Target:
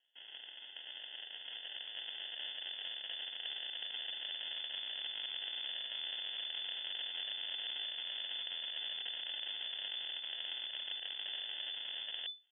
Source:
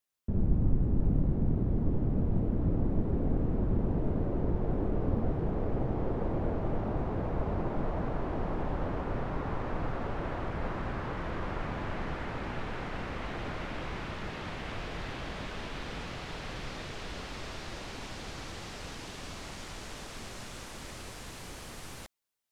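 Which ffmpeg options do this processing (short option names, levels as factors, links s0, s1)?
-filter_complex "[0:a]asplit=2[s0][s1];[s1]alimiter=limit=0.0794:level=0:latency=1:release=72,volume=1.33[s2];[s0][s2]amix=inputs=2:normalize=0,highpass=1200,aeval=exprs='0.0631*(cos(1*acos(clip(val(0)/0.0631,-1,1)))-cos(1*PI/2))+0.000398*(cos(2*acos(clip(val(0)/0.0631,-1,1)))-cos(2*PI/2))+0.0316*(cos(4*acos(clip(val(0)/0.0631,-1,1)))-cos(4*PI/2))+0.00126*(cos(7*acos(clip(val(0)/0.0631,-1,1)))-cos(7*PI/2))+0.00501*(cos(8*acos(clip(val(0)/0.0631,-1,1)))-cos(8*PI/2))':c=same,atempo=1.8,acrusher=samples=38:mix=1:aa=0.000001,lowpass=f=3000:t=q:w=0.5098,lowpass=f=3000:t=q:w=0.6013,lowpass=f=3000:t=q:w=0.9,lowpass=f=3000:t=q:w=2.563,afreqshift=-3500,areverse,acompressor=threshold=0.00794:ratio=5,areverse,volume=1.26"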